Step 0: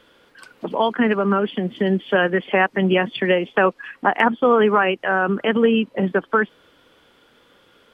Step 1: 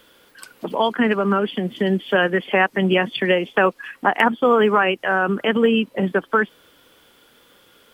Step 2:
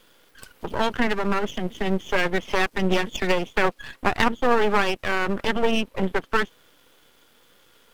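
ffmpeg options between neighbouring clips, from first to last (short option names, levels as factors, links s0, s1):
-af "aemphasis=mode=production:type=50fm"
-af "aeval=exprs='max(val(0),0)':c=same"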